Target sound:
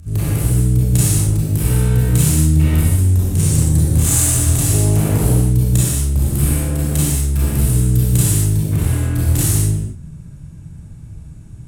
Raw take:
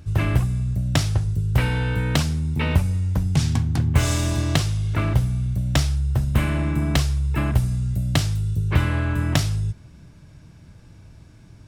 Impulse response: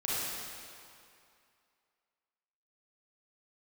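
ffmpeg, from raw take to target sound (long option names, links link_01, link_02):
-filter_complex "[0:a]bass=frequency=250:gain=13,treble=frequency=4000:gain=11,alimiter=limit=-4.5dB:level=0:latency=1:release=38,asettb=1/sr,asplit=3[link_01][link_02][link_03];[link_01]atrim=end=4.694[link_04];[link_02]atrim=start=4.69:end=5.29,asetpts=PTS-STARTPTS,afade=type=in:duration=0.004:curve=qsin,afade=type=out:start_time=0.596:duration=0.004:curve=qsin,acontrast=82[link_05];[link_03]atrim=start=5.286[link_06];[link_04][link_05]acrossfade=duration=0.004:curve1=hsin:curve2=qsin[link_07];[link_07][link_06]acrossfade=duration=0.004:curve1=qsin:curve2=hsin,asoftclip=type=tanh:threshold=-12dB,aexciter=amount=9.3:drive=8.3:freq=7500,adynamicsmooth=sensitivity=4.5:basefreq=2800[link_08];[1:a]atrim=start_sample=2205,afade=type=out:start_time=0.32:duration=0.01,atrim=end_sample=14553,asetrate=48510,aresample=44100[link_09];[link_08][link_09]afir=irnorm=-1:irlink=0,volume=-4.5dB"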